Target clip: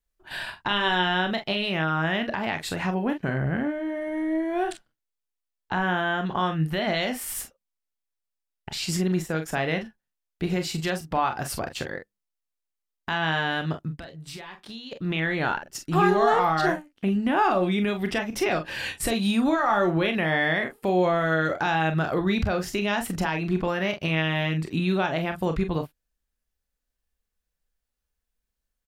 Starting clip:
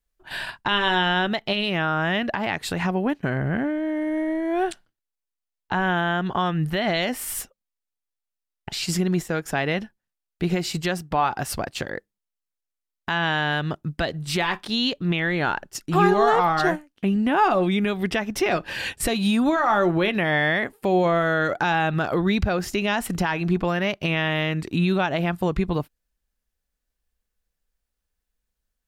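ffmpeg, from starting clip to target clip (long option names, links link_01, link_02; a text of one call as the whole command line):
ffmpeg -i in.wav -filter_complex "[0:a]asplit=3[link_01][link_02][link_03];[link_01]afade=type=out:start_time=13.91:duration=0.02[link_04];[link_02]acompressor=threshold=-34dB:ratio=20,afade=type=in:start_time=13.91:duration=0.02,afade=type=out:start_time=14.91:duration=0.02[link_05];[link_03]afade=type=in:start_time=14.91:duration=0.02[link_06];[link_04][link_05][link_06]amix=inputs=3:normalize=0,aecho=1:1:31|44:0.299|0.335,volume=-3dB" out.wav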